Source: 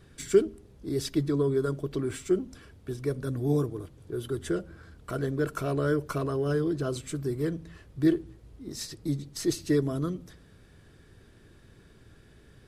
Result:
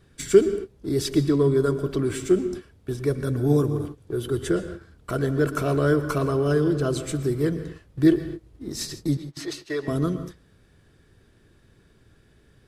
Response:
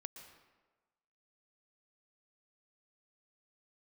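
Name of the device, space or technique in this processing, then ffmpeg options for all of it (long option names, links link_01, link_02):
keyed gated reverb: -filter_complex "[0:a]asettb=1/sr,asplit=3[link_01][link_02][link_03];[link_01]atrim=end=9.174[link_04];[link_02]atrim=start=9.17:end=9.88,asetpts=PTS-STARTPTS,afade=type=in:duration=0.004:curve=qsin,afade=type=out:start_time=0.706:duration=0.004:curve=qsin,acrossover=split=500 4400:gain=0.0891 1 0.224[link_05][link_06][link_07];[link_05][link_06][link_07]amix=inputs=3:normalize=0[link_08];[link_03]atrim=start=9.876[link_09];[link_04][link_08]acrossfade=duration=0.004:curve1=hsin:curve2=qsin[link_10];[link_10][link_09]acrossfade=duration=0.004:curve1=qsin:curve2=hsin,asplit=3[link_11][link_12][link_13];[1:a]atrim=start_sample=2205[link_14];[link_12][link_14]afir=irnorm=-1:irlink=0[link_15];[link_13]apad=whole_len=559154[link_16];[link_15][link_16]sidechaingate=range=-33dB:threshold=-45dB:ratio=16:detection=peak,volume=9.5dB[link_17];[link_11][link_17]amix=inputs=2:normalize=0,volume=-2.5dB"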